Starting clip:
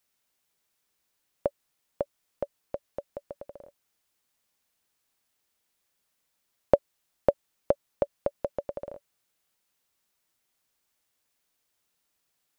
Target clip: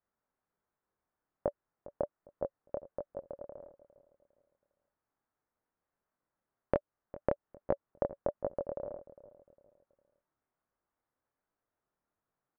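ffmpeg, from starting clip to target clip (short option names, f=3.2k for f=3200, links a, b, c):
-filter_complex "[0:a]lowpass=f=1.5k:w=0.5412,lowpass=f=1.5k:w=1.3066,acompressor=threshold=-23dB:ratio=6,flanger=delay=20:depth=7.8:speed=1.3,asplit=2[a][b];[b]adelay=405,lowpass=f=1k:p=1,volume=-16dB,asplit=2[c][d];[d]adelay=405,lowpass=f=1k:p=1,volume=0.39,asplit=2[e][f];[f]adelay=405,lowpass=f=1k:p=1,volume=0.39[g];[a][c][e][g]amix=inputs=4:normalize=0,volume=1dB"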